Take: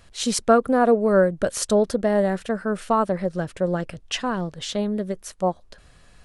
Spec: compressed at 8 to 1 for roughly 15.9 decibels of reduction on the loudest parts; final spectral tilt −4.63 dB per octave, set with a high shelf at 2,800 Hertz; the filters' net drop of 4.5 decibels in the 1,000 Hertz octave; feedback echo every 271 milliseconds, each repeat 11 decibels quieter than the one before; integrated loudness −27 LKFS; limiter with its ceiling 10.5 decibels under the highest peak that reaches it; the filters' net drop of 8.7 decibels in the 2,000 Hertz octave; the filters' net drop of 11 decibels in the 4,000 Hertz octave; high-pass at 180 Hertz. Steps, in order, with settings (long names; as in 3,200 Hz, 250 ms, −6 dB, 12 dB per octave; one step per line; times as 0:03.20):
high-pass filter 180 Hz
parametric band 1,000 Hz −4 dB
parametric band 2,000 Hz −7 dB
high-shelf EQ 2,800 Hz −6.5 dB
parametric band 4,000 Hz −6.5 dB
downward compressor 8 to 1, threshold −31 dBFS
brickwall limiter −30.5 dBFS
repeating echo 271 ms, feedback 28%, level −11 dB
level +13 dB